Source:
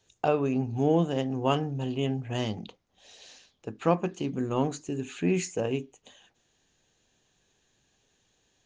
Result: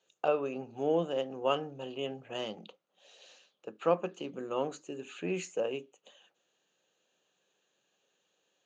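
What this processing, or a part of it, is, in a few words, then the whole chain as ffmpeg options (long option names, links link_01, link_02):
television speaker: -af "highpass=frequency=190:width=0.5412,highpass=frequency=190:width=1.3066,equalizer=frequency=250:width_type=q:width=4:gain=-8,equalizer=frequency=540:width_type=q:width=4:gain=8,equalizer=frequency=1300:width_type=q:width=4:gain=6,equalizer=frequency=2000:width_type=q:width=4:gain=-3,equalizer=frequency=2800:width_type=q:width=4:gain=5,equalizer=frequency=5300:width_type=q:width=4:gain=-6,lowpass=frequency=8000:width=0.5412,lowpass=frequency=8000:width=1.3066,volume=-6.5dB"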